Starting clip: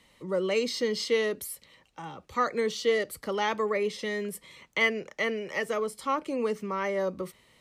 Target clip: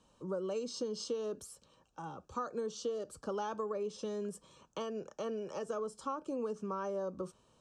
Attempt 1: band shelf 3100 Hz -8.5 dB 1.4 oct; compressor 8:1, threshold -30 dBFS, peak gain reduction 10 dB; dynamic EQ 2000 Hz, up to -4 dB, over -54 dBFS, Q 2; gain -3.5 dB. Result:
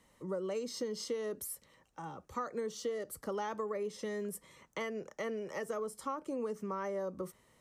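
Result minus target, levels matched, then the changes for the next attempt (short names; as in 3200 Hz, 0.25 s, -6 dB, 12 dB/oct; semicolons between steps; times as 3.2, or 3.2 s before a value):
2000 Hz band +7.0 dB; 8000 Hz band +3.0 dB
add first: LPF 8000 Hz 24 dB/oct; add after compressor: Butterworth band-stop 2000 Hz, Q 2.8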